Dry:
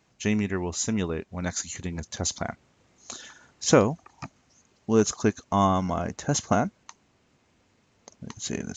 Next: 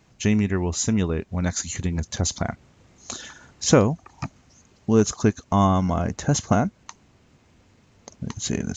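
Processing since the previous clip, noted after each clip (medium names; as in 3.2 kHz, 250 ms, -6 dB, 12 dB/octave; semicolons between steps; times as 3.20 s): bass shelf 170 Hz +9 dB; in parallel at 0 dB: compression, threshold -29 dBFS, peak gain reduction 17.5 dB; on the sum: trim -1 dB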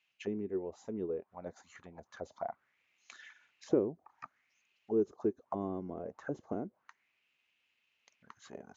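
auto-wah 370–2800 Hz, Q 4.6, down, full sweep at -17.5 dBFS; trim -4.5 dB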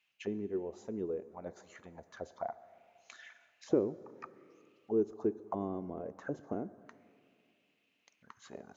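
plate-style reverb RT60 2.5 s, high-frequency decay 0.75×, DRR 15.5 dB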